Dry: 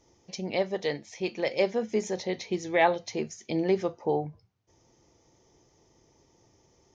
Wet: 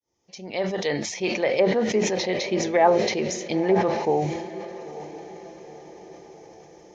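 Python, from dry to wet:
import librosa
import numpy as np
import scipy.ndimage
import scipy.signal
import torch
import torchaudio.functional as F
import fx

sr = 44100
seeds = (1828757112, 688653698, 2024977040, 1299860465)

p1 = fx.fade_in_head(x, sr, length_s=1.07)
p2 = fx.low_shelf(p1, sr, hz=330.0, db=-6.0)
p3 = fx.env_lowpass_down(p2, sr, base_hz=1100.0, full_db=-23.0)
p4 = p3 + fx.echo_diffused(p3, sr, ms=924, feedback_pct=52, wet_db=-14.0, dry=0)
p5 = fx.sustainer(p4, sr, db_per_s=46.0)
y = p5 * 10.0 ** (6.5 / 20.0)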